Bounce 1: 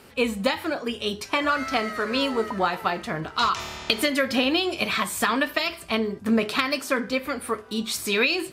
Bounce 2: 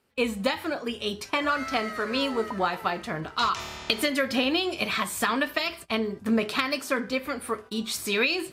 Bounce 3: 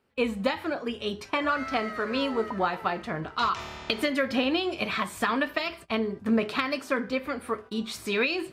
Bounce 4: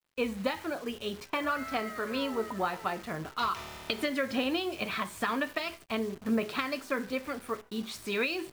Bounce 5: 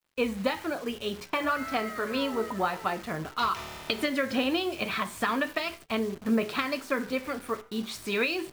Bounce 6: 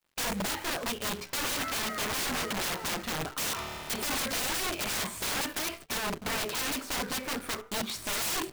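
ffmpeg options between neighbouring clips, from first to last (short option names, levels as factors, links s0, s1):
-af "agate=range=0.112:threshold=0.0112:ratio=16:detection=peak,volume=0.75"
-af "highshelf=f=4800:g=-12"
-af "acrusher=bits=8:dc=4:mix=0:aa=0.000001,volume=0.596"
-af "flanger=delay=3.3:depth=5.7:regen=-89:speed=0.34:shape=triangular,volume=2.37"
-af "aeval=exprs='(mod(26.6*val(0)+1,2)-1)/26.6':c=same,volume=1.26"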